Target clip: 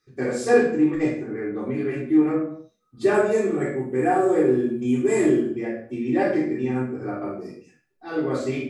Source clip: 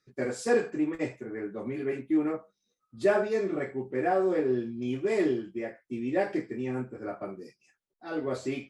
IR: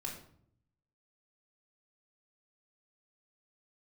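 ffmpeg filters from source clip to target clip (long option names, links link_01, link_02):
-filter_complex "[0:a]asettb=1/sr,asplit=3[link_01][link_02][link_03];[link_01]atrim=end=3.144[link_04];[link_02]atrim=start=3.14:end=5.48,asetpts=PTS-STARTPTS,afade=type=in:duration=0.004:curve=qsin,afade=type=out:start_time=2.336:duration=0.004:curve=qsin,highshelf=frequency=6300:width_type=q:width=3:gain=7.5[link_05];[link_03]atrim=start=5.476[link_06];[link_04][link_05]acrossfade=duration=0.004:curve1=hsin:curve2=qsin[link_07];[link_07][link_06]acrossfade=duration=0.004:curve1=qsin:curve2=hsin[link_08];[1:a]atrim=start_sample=2205,afade=type=out:start_time=0.37:duration=0.01,atrim=end_sample=16758[link_09];[link_08][link_09]afir=irnorm=-1:irlink=0,volume=6.5dB"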